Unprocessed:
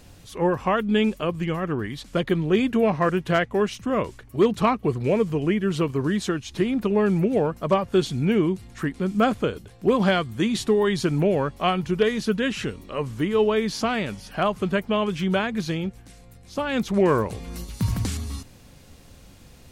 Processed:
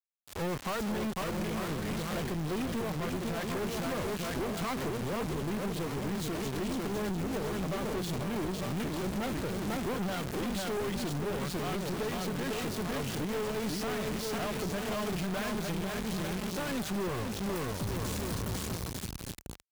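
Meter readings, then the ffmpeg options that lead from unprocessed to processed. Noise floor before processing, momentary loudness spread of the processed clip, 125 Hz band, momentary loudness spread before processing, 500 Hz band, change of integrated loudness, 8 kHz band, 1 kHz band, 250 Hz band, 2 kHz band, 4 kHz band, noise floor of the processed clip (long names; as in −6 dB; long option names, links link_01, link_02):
−49 dBFS, 1 LU, −8.5 dB, 9 LU, −12.0 dB, −10.5 dB, −0.5 dB, −10.0 dB, −10.0 dB, −9.0 dB, −6.5 dB, −41 dBFS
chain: -filter_complex "[0:a]acrossover=split=150[link_01][link_02];[link_01]equalizer=frequency=71:width=0.35:gain=-10[link_03];[link_02]asoftclip=type=tanh:threshold=-18.5dB[link_04];[link_03][link_04]amix=inputs=2:normalize=0,aecho=1:1:500|900|1220|1476|1681:0.631|0.398|0.251|0.158|0.1,acrusher=bits=3:dc=4:mix=0:aa=0.000001,alimiter=limit=-18.5dB:level=0:latency=1:release=115,highpass=40,lowshelf=frequency=170:gain=7.5,acompressor=threshold=-26dB:ratio=6,volume=30.5dB,asoftclip=hard,volume=-30.5dB"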